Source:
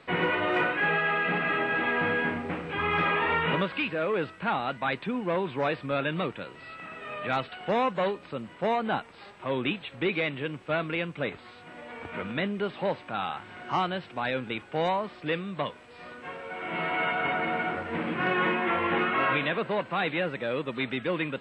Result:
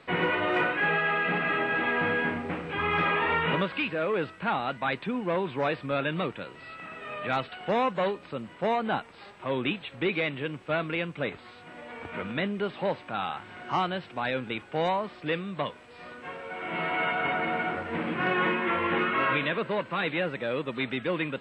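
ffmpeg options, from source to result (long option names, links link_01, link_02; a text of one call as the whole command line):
ffmpeg -i in.wav -filter_complex "[0:a]asettb=1/sr,asplit=3[link_01][link_02][link_03];[link_01]atrim=end=18.484[link_04];[link_02]atrim=start=18.48:end=20.11,asetpts=PTS-STARTPTS,afade=type=in:duration=0.004:curve=qsin,afade=type=out:start_time=1.626:duration=0.004:curve=qsin,bandreject=frequency=750:width=5.9[link_05];[link_03]atrim=start=20.106[link_06];[link_04][link_05]acrossfade=duration=0.004:curve1=hsin:curve2=qsin[link_07];[link_07][link_06]acrossfade=duration=0.004:curve1=qsin:curve2=hsin" out.wav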